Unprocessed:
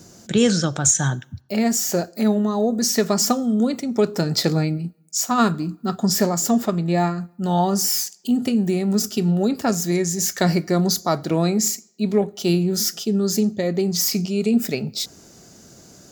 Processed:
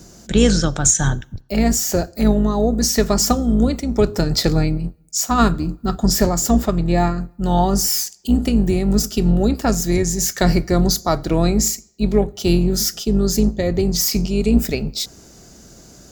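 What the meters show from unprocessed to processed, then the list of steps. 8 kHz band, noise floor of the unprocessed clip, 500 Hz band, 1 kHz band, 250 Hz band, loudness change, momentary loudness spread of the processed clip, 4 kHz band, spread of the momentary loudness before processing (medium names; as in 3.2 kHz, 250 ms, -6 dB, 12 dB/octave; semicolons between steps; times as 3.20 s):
+2.0 dB, -50 dBFS, +2.0 dB, +2.0 dB, +2.0 dB, +2.5 dB, 6 LU, +2.0 dB, 6 LU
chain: octave divider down 2 oct, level -2 dB; trim +2 dB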